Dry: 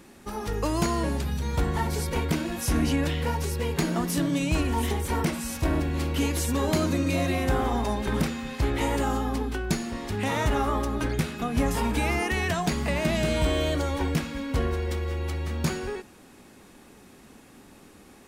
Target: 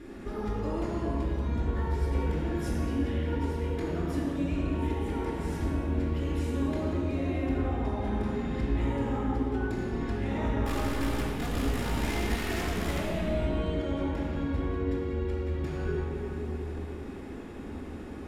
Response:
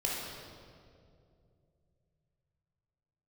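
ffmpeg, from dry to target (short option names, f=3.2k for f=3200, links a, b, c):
-filter_complex "[0:a]lowpass=f=1.6k:p=1,acompressor=threshold=-41dB:ratio=4,asettb=1/sr,asplit=3[a][b][c];[a]atrim=end=10.654[d];[b]atrim=start=10.65:end=12.99,asetpts=PTS-STARTPTS,afade=t=in:d=0.004:c=qsin,afade=t=out:st=2.336:d=0.004:c=qsin,acrusher=bits=7:dc=4:mix=0:aa=0.000001[e];[c]atrim=start=12.986[f];[d][e]acrossfade=d=0.004:c1=hsin:c2=qsin[g];[g][f]acrossfade=d=0.004:c1=qsin:c2=hsin[h];[1:a]atrim=start_sample=2205,asetrate=29988,aresample=44100[i];[h][i]afir=irnorm=-1:irlink=0"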